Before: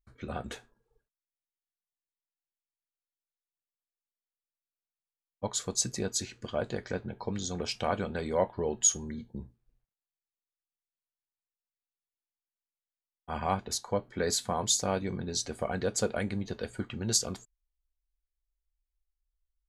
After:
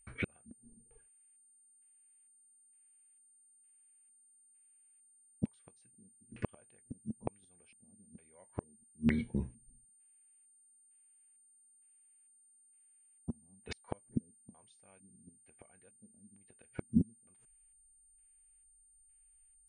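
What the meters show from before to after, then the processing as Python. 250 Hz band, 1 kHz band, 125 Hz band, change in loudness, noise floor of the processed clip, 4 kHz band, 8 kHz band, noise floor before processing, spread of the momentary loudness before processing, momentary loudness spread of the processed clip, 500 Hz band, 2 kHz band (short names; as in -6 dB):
-1.5 dB, -19.5 dB, -5.0 dB, -8.0 dB, -66 dBFS, -23.5 dB, -24.5 dB, under -85 dBFS, 13 LU, 25 LU, -17.0 dB, -8.0 dB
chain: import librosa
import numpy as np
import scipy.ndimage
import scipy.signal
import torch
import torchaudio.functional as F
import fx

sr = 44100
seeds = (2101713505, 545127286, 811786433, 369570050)

y = fx.gate_flip(x, sr, shuts_db=-26.0, range_db=-41)
y = fx.filter_lfo_lowpass(y, sr, shape='square', hz=1.1, low_hz=230.0, high_hz=2500.0, q=4.0)
y = y + 10.0 ** (-69.0 / 20.0) * np.sin(2.0 * np.pi * 9000.0 * np.arange(len(y)) / sr)
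y = y * 10.0 ** (6.0 / 20.0)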